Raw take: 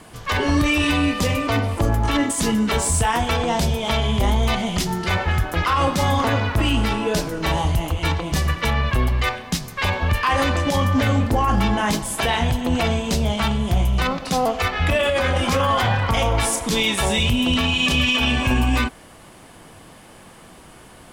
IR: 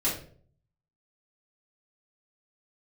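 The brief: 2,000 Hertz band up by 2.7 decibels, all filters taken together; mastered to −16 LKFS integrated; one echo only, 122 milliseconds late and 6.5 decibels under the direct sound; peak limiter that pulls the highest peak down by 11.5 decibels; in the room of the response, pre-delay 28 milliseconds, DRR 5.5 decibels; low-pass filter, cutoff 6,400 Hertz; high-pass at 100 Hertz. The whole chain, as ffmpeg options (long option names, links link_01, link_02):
-filter_complex "[0:a]highpass=100,lowpass=6400,equalizer=frequency=2000:width_type=o:gain=3.5,alimiter=limit=-18dB:level=0:latency=1,aecho=1:1:122:0.473,asplit=2[link_01][link_02];[1:a]atrim=start_sample=2205,adelay=28[link_03];[link_02][link_03]afir=irnorm=-1:irlink=0,volume=-14.5dB[link_04];[link_01][link_04]amix=inputs=2:normalize=0,volume=8dB"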